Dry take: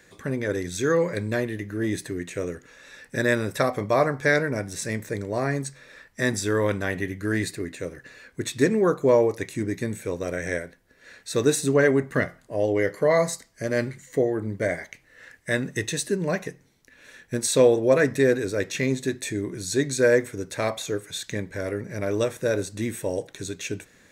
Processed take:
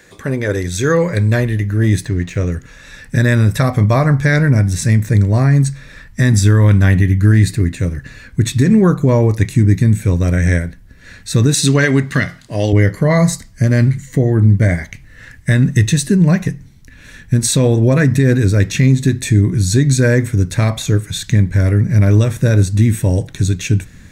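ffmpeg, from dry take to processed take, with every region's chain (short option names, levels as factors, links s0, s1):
-filter_complex "[0:a]asettb=1/sr,asplit=3[s0][s1][s2];[s0]atrim=end=2.054[s3];[s1]atrim=start=2.05:end=2.52,asetpts=PTS-STARTPTS,afade=t=in:d=0.004:c=qsin,afade=t=out:st=0.466:d=0.004:c=qsin,lowpass=f=6700:w=0.5412,lowpass=f=6700:w=1.3066,aeval=exprs='sgn(val(0))*max(abs(val(0))-0.0015,0)':c=same[s4];[s2]atrim=start=2.516[s5];[s3][s4]acrossfade=d=0.004:c1=hsin:c2=qsin[s6];[s6][s5]acrossfade=d=0.004:c1=qsin:c2=hsin,asettb=1/sr,asplit=3[s7][s8][s9];[s7]atrim=end=11.544[s10];[s8]atrim=start=11.54:end=12.73,asetpts=PTS-STARTPTS,afade=t=in:d=0.004:c=qsin,afade=t=out:st=1.186:d=0.004:c=qsin,highpass=f=260:p=1,equalizer=f=4000:w=0.67:g=12[s11];[s9]atrim=start=12.726[s12];[s10][s11]acrossfade=d=0.004:c1=hsin:c2=qsin[s13];[s13][s12]acrossfade=d=0.004:c1=qsin:c2=hsin,asubboost=boost=11:cutoff=140,alimiter=limit=0.251:level=0:latency=1:release=98,volume=2.82"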